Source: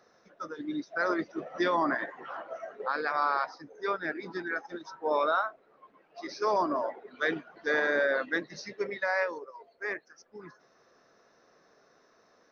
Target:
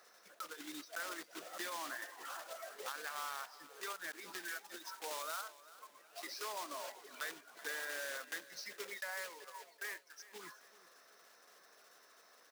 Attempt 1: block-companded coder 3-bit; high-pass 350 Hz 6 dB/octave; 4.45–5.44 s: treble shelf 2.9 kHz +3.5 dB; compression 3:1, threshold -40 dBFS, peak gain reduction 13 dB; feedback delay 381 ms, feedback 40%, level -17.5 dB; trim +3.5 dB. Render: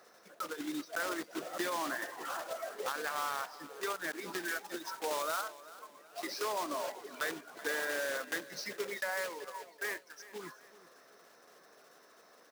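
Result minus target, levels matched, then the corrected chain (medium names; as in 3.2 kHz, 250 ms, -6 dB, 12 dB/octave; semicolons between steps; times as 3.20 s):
250 Hz band +6.0 dB; compression: peak gain reduction -4.5 dB
block-companded coder 3-bit; high-pass 1.4 kHz 6 dB/octave; 4.45–5.44 s: treble shelf 2.9 kHz +3.5 dB; compression 3:1, threshold -49 dBFS, peak gain reduction 17.5 dB; feedback delay 381 ms, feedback 40%, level -17.5 dB; trim +3.5 dB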